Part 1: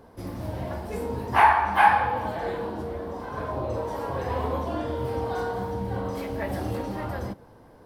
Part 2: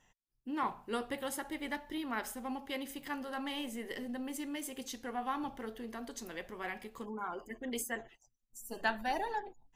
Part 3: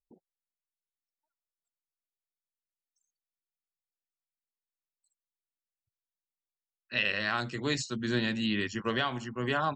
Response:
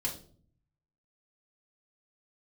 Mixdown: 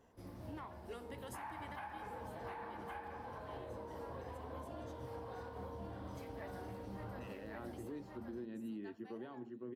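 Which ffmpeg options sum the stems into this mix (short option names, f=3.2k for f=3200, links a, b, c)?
-filter_complex "[0:a]alimiter=limit=-15dB:level=0:latency=1:release=466,volume=-16.5dB,asplit=2[a][b];[b]volume=-3dB[c];[1:a]highpass=f=260:w=0.5412,highpass=f=260:w=1.3066,volume=-9dB,afade=t=out:st=1.83:d=0.23:silence=0.223872[d];[2:a]bandpass=f=330:t=q:w=2:csg=0,adelay=250,volume=-5dB,asplit=2[e][f];[f]volume=-23dB[g];[c][g]amix=inputs=2:normalize=0,aecho=0:1:1122:1[h];[a][d][e][h]amix=inputs=4:normalize=0,alimiter=level_in=13.5dB:limit=-24dB:level=0:latency=1:release=229,volume=-13.5dB"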